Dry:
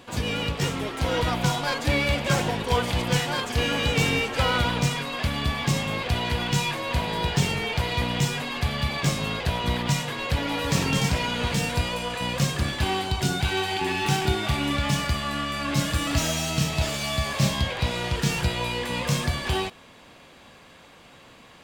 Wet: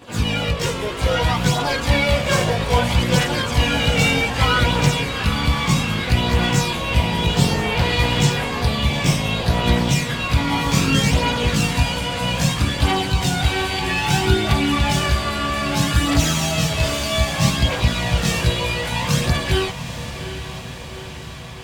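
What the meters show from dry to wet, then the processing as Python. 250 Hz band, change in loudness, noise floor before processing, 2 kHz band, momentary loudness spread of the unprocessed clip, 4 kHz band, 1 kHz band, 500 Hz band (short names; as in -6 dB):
+6.5 dB, +6.0 dB, -50 dBFS, +6.0 dB, 4 LU, +6.0 dB, +5.5 dB, +5.5 dB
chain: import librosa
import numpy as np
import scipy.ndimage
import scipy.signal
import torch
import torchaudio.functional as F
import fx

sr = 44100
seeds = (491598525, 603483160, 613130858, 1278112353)

y = fx.chorus_voices(x, sr, voices=2, hz=0.31, base_ms=18, depth_ms=1.0, mix_pct=65)
y = fx.echo_diffused(y, sr, ms=830, feedback_pct=65, wet_db=-11.5)
y = F.gain(torch.from_numpy(y), 8.0).numpy()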